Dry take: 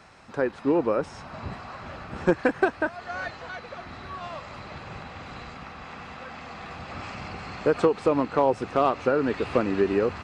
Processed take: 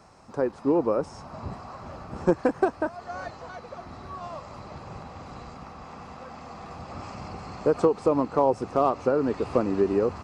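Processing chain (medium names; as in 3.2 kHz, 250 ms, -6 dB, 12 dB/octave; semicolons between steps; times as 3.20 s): high-order bell 2.4 kHz -9.5 dB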